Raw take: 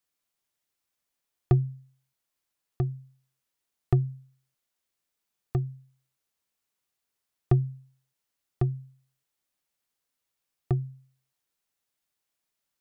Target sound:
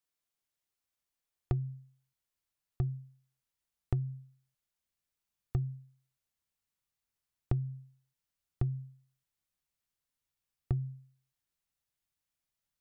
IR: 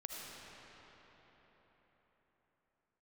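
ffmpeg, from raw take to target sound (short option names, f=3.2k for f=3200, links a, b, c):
-af "asubboost=boost=3:cutoff=180,acompressor=threshold=-21dB:ratio=12,volume=-6dB"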